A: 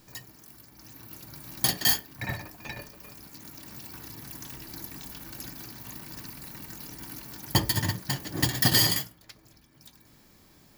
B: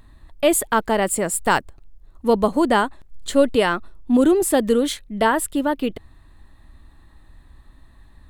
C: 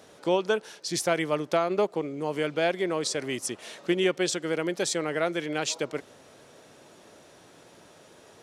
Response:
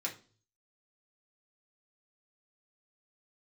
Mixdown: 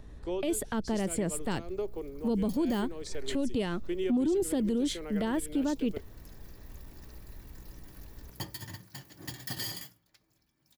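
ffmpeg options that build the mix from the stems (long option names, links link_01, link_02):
-filter_complex "[0:a]adelay=850,volume=-16.5dB,asplit=2[link_01][link_02];[link_02]volume=-14.5dB[link_03];[1:a]lowpass=frequency=2100:poles=1,equalizer=frequency=1200:width=1.5:gain=-4,volume=-1dB,asplit=2[link_04][link_05];[2:a]equalizer=frequency=400:width_type=o:width=0.55:gain=10,aeval=exprs='val(0)+0.0112*(sin(2*PI*60*n/s)+sin(2*PI*2*60*n/s)/2+sin(2*PI*3*60*n/s)/3+sin(2*PI*4*60*n/s)/4+sin(2*PI*5*60*n/s)/5)':channel_layout=same,volume=-14.5dB,asplit=2[link_06][link_07];[link_07]volume=-19.5dB[link_08];[link_05]apad=whole_len=512566[link_09];[link_01][link_09]sidechaincompress=threshold=-24dB:ratio=8:attack=7.5:release=1500[link_10];[3:a]atrim=start_sample=2205[link_11];[link_03][link_08]amix=inputs=2:normalize=0[link_12];[link_12][link_11]afir=irnorm=-1:irlink=0[link_13];[link_10][link_04][link_06][link_13]amix=inputs=4:normalize=0,acrossover=split=330|3000[link_14][link_15][link_16];[link_15]acompressor=threshold=-33dB:ratio=6[link_17];[link_14][link_17][link_16]amix=inputs=3:normalize=0,asoftclip=type=tanh:threshold=-10.5dB,alimiter=limit=-22dB:level=0:latency=1:release=43"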